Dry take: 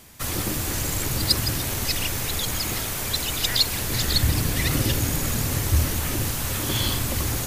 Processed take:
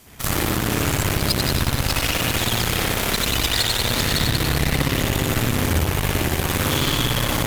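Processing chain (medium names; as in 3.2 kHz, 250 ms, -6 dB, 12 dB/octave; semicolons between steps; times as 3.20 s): spring tank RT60 1.9 s, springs 60 ms, chirp 35 ms, DRR -8 dB; compression 5:1, threshold -22 dBFS, peak gain reduction 11 dB; Chebyshev shaper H 4 -10 dB, 6 -9 dB, 7 -23 dB, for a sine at -11 dBFS; trim +4.5 dB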